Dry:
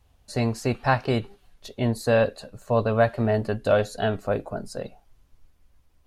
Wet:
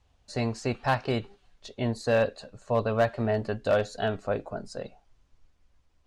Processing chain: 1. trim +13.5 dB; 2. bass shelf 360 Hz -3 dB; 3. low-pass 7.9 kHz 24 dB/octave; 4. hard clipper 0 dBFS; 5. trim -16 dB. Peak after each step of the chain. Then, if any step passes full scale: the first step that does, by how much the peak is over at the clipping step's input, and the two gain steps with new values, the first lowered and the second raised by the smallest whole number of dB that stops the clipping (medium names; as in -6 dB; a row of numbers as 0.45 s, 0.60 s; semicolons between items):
+6.0 dBFS, +5.5 dBFS, +5.5 dBFS, 0.0 dBFS, -16.0 dBFS; step 1, 5.5 dB; step 1 +7.5 dB, step 5 -10 dB